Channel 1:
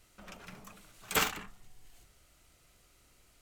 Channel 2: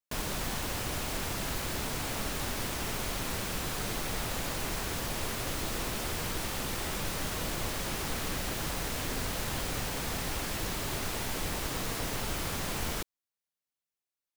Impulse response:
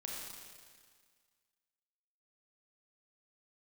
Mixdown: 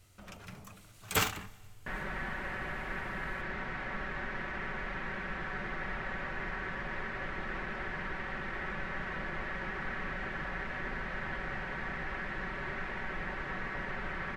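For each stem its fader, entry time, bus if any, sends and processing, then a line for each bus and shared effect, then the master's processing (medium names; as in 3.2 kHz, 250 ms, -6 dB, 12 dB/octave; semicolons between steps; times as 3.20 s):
-1.0 dB, 0.00 s, send -19 dB, peaking EQ 96 Hz +14 dB 0.74 oct
-6.5 dB, 1.75 s, no send, resonant low-pass 1.8 kHz, resonance Q 3.7; comb 5.3 ms, depth 54%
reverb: on, RT60 1.8 s, pre-delay 28 ms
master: none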